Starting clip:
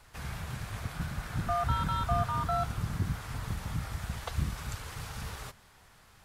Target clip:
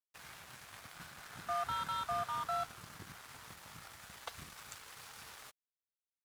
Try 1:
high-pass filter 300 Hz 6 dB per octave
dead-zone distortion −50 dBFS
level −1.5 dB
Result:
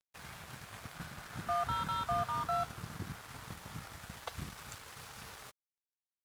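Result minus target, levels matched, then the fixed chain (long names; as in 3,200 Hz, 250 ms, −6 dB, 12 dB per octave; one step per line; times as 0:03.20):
250 Hz band +7.0 dB
high-pass filter 920 Hz 6 dB per octave
dead-zone distortion −50 dBFS
level −1.5 dB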